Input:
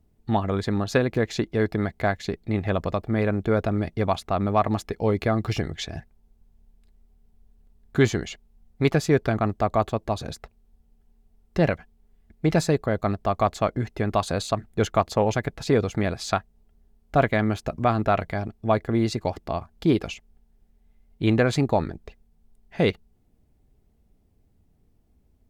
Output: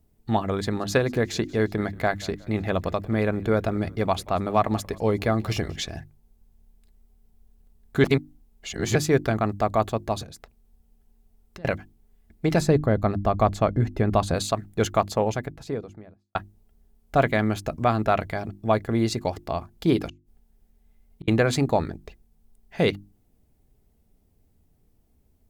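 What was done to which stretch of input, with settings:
0.61–5.92 frequency-shifting echo 0.181 s, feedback 42%, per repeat -40 Hz, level -22 dB
8.04–8.95 reverse
10.23–11.65 compressor 16:1, threshold -39 dBFS
12.6–14.34 tilt -2 dB/oct
14.84–16.35 studio fade out
20.09–21.28 flipped gate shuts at -28 dBFS, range -42 dB
whole clip: high shelf 7500 Hz +9 dB; notches 50/100/150/200/250/300/350 Hz

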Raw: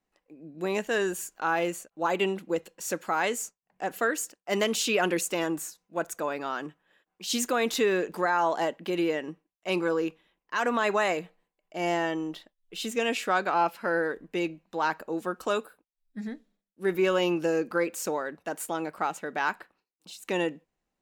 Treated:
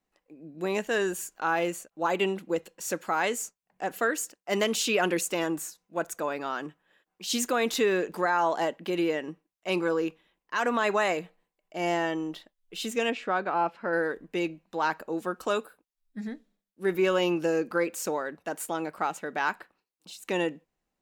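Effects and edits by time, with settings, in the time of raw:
13.1–13.93 tape spacing loss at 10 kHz 23 dB

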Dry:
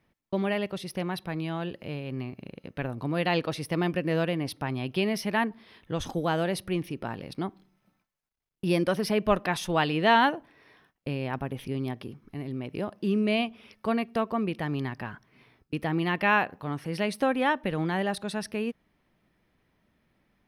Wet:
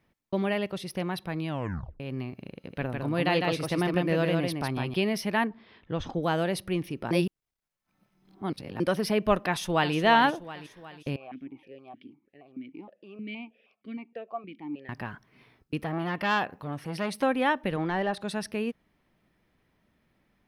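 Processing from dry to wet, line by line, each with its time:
1.48 tape stop 0.52 s
2.54–4.94 echo 0.155 s -3.5 dB
5.47–6.23 air absorption 160 m
7.11–8.8 reverse
9.46–9.94 echo throw 0.36 s, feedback 55%, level -11 dB
11.16–14.89 vowel sequencer 6.4 Hz
15.81–17.23 core saturation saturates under 1600 Hz
17.76–18.21 overdrive pedal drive 11 dB, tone 1300 Hz, clips at -16.5 dBFS

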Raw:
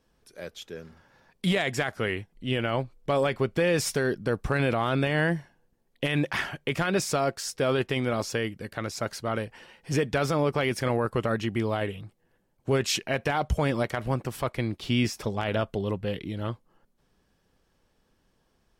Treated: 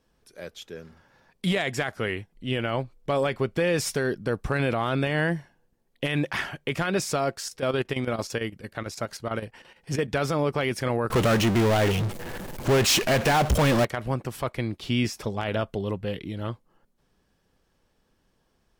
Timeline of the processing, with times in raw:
7.4–10.08 chopper 8.9 Hz, depth 65%, duty 75%
11.1–13.85 power-law curve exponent 0.35

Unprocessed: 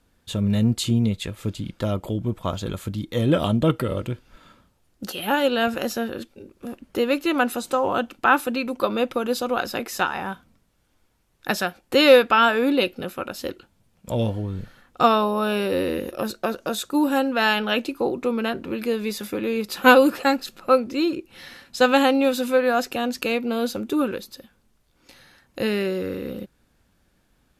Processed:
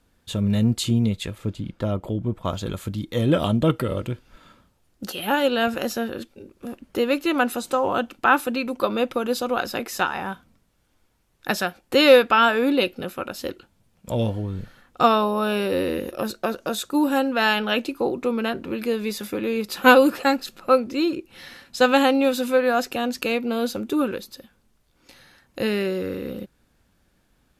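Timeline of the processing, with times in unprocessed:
1.38–2.45 high shelf 2700 Hz -9 dB

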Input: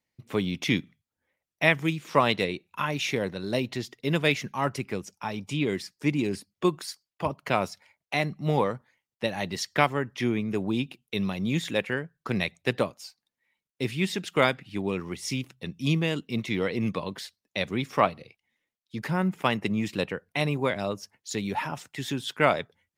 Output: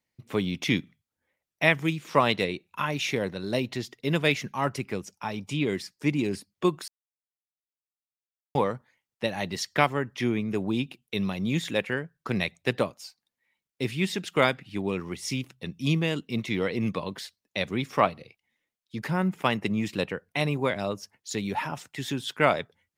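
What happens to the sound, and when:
6.88–8.55 mute

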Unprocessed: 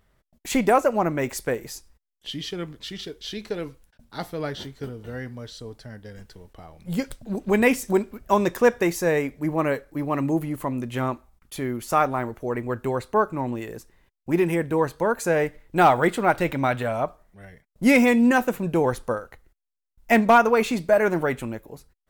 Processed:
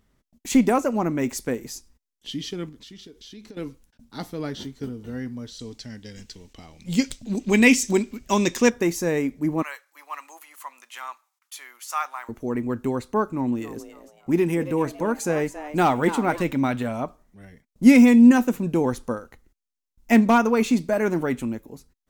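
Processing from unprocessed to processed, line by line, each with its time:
2.69–3.57 compressor 4:1, threshold -42 dBFS
5.59–8.7 band shelf 4000 Hz +10 dB 2.3 oct
9.62–12.29 HPF 930 Hz 24 dB/oct
13.26–16.42 frequency-shifting echo 0.278 s, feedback 35%, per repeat +150 Hz, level -12 dB
whole clip: fifteen-band EQ 250 Hz +9 dB, 630 Hz -4 dB, 1600 Hz -3 dB, 6300 Hz +5 dB; gain -2 dB

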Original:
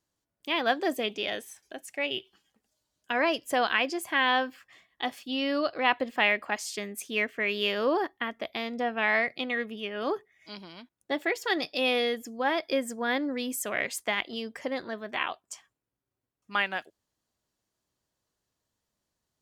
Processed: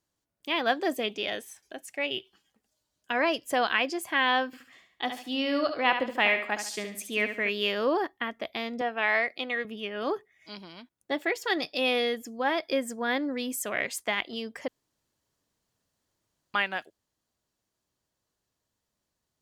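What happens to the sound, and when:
4.46–7.49 feedback echo 71 ms, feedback 34%, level -8 dB
8.81–9.65 HPF 300 Hz
14.68–16.54 room tone

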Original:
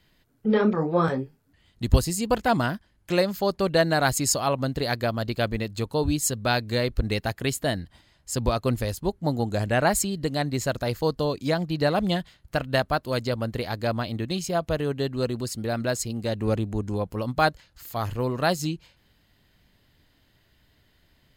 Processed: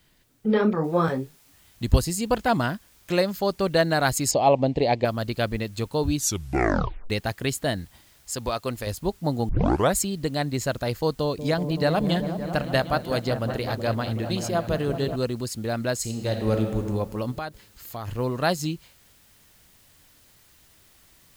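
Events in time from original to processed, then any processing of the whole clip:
0.84 noise floor step -69 dB -58 dB
4.31–5.05 EQ curve 100 Hz 0 dB, 830 Hz +9 dB, 1400 Hz -14 dB, 2300 Hz +4 dB, 7900 Hz -12 dB, 11000 Hz -27 dB
6.14 tape stop 0.96 s
8.32–8.87 low shelf 330 Hz -10 dB
9.49 tape start 0.46 s
11.15–15.16 repeats that get brighter 0.189 s, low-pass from 400 Hz, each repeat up 1 oct, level -6 dB
15.97–16.8 reverb throw, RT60 1.6 s, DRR 3.5 dB
17.38–18.08 compressor 4:1, threshold -30 dBFS

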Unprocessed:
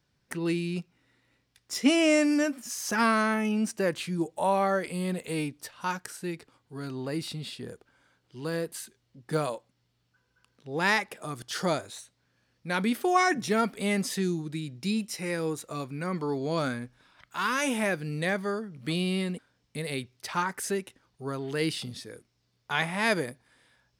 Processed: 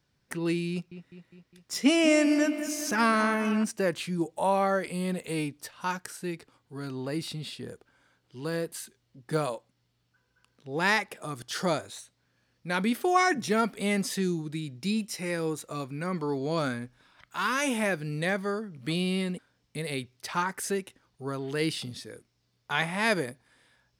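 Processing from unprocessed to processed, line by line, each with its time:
0.71–3.64 dark delay 0.204 s, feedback 61%, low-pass 3000 Hz, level -11 dB

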